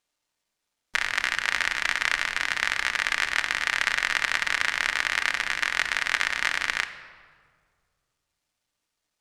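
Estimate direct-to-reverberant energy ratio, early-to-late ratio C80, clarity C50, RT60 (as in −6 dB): 7.0 dB, 13.0 dB, 12.0 dB, 1.9 s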